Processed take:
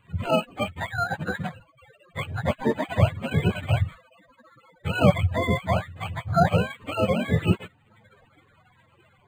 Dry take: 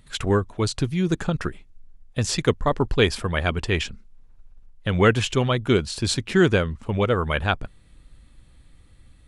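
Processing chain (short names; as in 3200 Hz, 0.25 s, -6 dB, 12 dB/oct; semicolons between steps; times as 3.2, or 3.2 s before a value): spectrum mirrored in octaves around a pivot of 510 Hz; decimation joined by straight lines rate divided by 8×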